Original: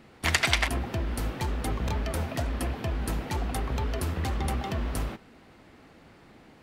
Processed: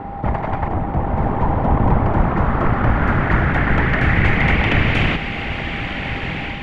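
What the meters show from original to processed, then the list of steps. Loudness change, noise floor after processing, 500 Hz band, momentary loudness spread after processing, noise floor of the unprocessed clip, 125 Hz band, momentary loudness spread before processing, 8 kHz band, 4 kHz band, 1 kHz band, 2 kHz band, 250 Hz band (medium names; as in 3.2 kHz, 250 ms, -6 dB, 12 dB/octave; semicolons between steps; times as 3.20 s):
+11.0 dB, -27 dBFS, +12.5 dB, 8 LU, -55 dBFS, +13.5 dB, 7 LU, under -10 dB, +4.0 dB, +15.0 dB, +13.0 dB, +14.5 dB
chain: spectral levelling over time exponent 0.4; high-pass 68 Hz; level rider gain up to 6 dB; whisper effect; whistle 800 Hz -36 dBFS; dynamic bell 4.4 kHz, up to -4 dB, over -36 dBFS, Q 1.2; low-pass sweep 920 Hz -> 2.7 kHz, 1.83–5.04 s; bass shelf 210 Hz +12 dB; trim -2 dB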